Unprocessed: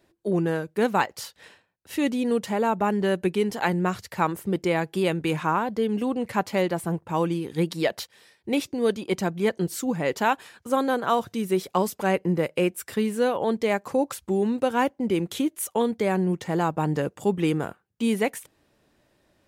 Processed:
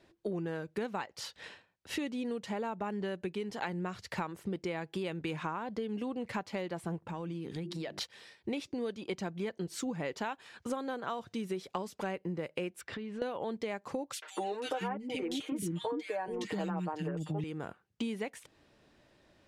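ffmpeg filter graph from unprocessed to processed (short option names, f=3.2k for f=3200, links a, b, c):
-filter_complex "[0:a]asettb=1/sr,asplit=3[a][b][c];[a]atrim=end=7.014[d];[b]atrim=start=7.01:end=8.01,asetpts=PTS-STARTPTS,afade=t=in:d=0.004:c=qsin,afade=t=out:st=0.996:d=0.004:c=qsin,equalizer=f=190:t=o:w=1.4:g=5.5,bandreject=f=50:t=h:w=6,bandreject=f=100:t=h:w=6,bandreject=f=150:t=h:w=6,bandreject=f=200:t=h:w=6,bandreject=f=250:t=h:w=6,bandreject=f=300:t=h:w=6,bandreject=f=350:t=h:w=6,bandreject=f=400:t=h:w=6,acompressor=threshold=-36dB:ratio=6:attack=3.2:release=140:knee=1:detection=peak[e];[c]atrim=start=8.006[f];[d][e]acrossfade=d=0.004:c1=hsin:c2=qsin[g];[g][f]acrossfade=d=0.004:c1=qsin:c2=hsin,asettb=1/sr,asplit=3[h][i][j];[h]atrim=end=12.814[k];[i]atrim=start=12.81:end=13.22,asetpts=PTS-STARTPTS,afade=t=in:d=0.004:c=qsin,afade=t=out:st=0.406:d=0.004:c=qsin,lowpass=3.6k,acompressor=threshold=-37dB:ratio=12:attack=3.2:release=140:knee=1:detection=peak[l];[j]atrim=start=13.216[m];[k][l]acrossfade=d=0.004:c1=hsin:c2=qsin[n];[n][m]acrossfade=d=0.004:c1=qsin:c2=hsin,asettb=1/sr,asplit=3[o][p][q];[o]atrim=end=14.134[r];[p]atrim=start=14.13:end=17.44,asetpts=PTS-STARTPTS,afade=t=in:d=0.004:c=qsin,afade=t=out:st=3.306:d=0.004:c=qsin,acontrast=69,aecho=1:1:6.5:0.82,atrim=end_sample=145971,acrossover=split=350|1900[s][t][u];[t]adelay=90[v];[s]adelay=520[w];[w][v][u]amix=inputs=3:normalize=0,atrim=end_sample=145971[x];[q]atrim=start=17.436[y];[r][x]acrossfade=d=0.004:c1=hsin:c2=qsin[z];[z][y]acrossfade=d=0.004:c1=qsin:c2=hsin,lowpass=4.2k,aemphasis=mode=production:type=50kf,acompressor=threshold=-33dB:ratio=12"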